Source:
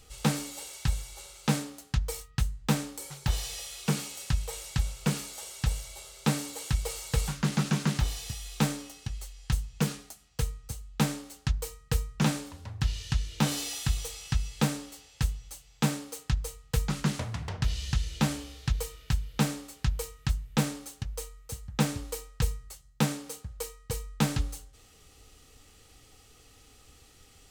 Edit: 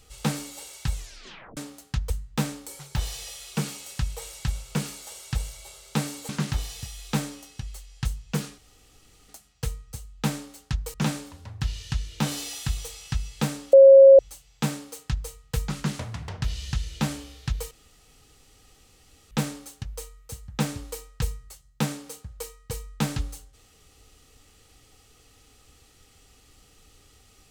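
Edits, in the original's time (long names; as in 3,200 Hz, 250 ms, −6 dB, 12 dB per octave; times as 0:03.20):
0:00.93: tape stop 0.64 s
0:02.10–0:02.41: remove
0:06.60–0:07.76: remove
0:10.05: splice in room tone 0.71 s
0:11.70–0:12.14: remove
0:14.93–0:15.39: beep over 543 Hz −7 dBFS
0:18.91–0:20.51: fill with room tone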